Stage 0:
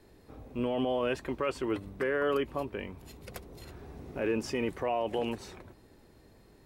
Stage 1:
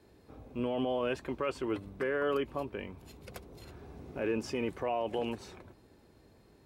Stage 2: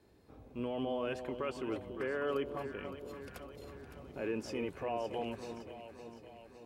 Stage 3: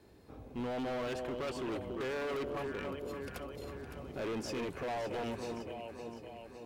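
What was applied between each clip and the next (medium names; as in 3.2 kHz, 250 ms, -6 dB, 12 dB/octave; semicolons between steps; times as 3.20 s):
high-pass 45 Hz; treble shelf 8.6 kHz -4.5 dB; band-stop 1.9 kHz, Q 17; trim -2 dB
echo whose repeats swap between lows and highs 281 ms, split 890 Hz, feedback 75%, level -8 dB; trim -4.5 dB
hard clipper -39.5 dBFS, distortion -6 dB; trim +5 dB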